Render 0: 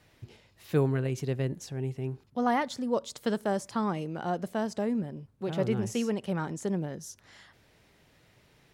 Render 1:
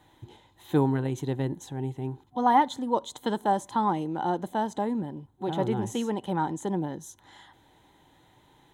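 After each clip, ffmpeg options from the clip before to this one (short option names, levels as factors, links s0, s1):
-af "superequalizer=6b=2.24:9b=3.55:12b=0.562:13b=1.58:14b=0.316"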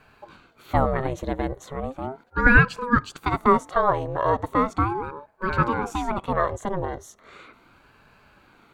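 -af "equalizer=f=630:t=o:w=0.67:g=11,equalizer=f=1600:t=o:w=0.67:g=10,equalizer=f=10000:t=o:w=0.67:g=-4,aeval=exprs='val(0)*sin(2*PI*470*n/s+470*0.6/0.37*sin(2*PI*0.37*n/s))':c=same,volume=1.41"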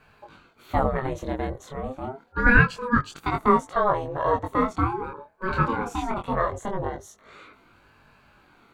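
-af "flanger=delay=19:depth=8:speed=0.27,volume=1.19"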